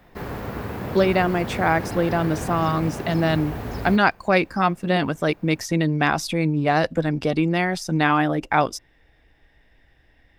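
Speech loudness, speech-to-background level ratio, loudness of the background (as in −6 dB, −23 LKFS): −22.0 LKFS, 9.5 dB, −31.5 LKFS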